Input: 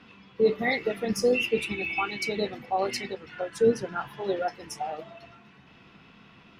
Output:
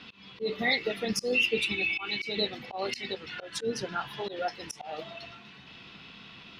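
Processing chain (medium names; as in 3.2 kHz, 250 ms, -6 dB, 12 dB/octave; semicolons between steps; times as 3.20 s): peaking EQ 3.9 kHz +12.5 dB 1.3 oct; slow attack 167 ms; in parallel at +1.5 dB: compression, threshold -34 dBFS, peak gain reduction 15.5 dB; on the sum: trim -6 dB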